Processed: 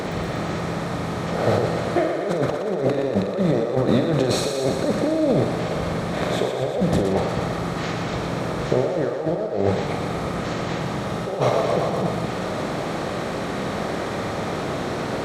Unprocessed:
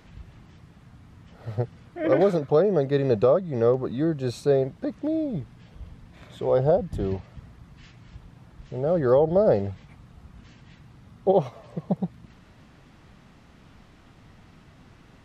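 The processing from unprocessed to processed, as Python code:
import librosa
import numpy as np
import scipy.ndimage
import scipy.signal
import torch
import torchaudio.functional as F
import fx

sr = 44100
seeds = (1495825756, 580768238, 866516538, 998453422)

y = fx.bin_compress(x, sr, power=0.6)
y = fx.highpass(y, sr, hz=190.0, slope=6)
y = fx.over_compress(y, sr, threshold_db=-28.0, ratio=-1.0)
y = fx.doubler(y, sr, ms=48.0, db=-8)
y = fx.echo_thinned(y, sr, ms=120, feedback_pct=74, hz=350.0, wet_db=-6.0)
y = y * 10.0 ** (5.5 / 20.0)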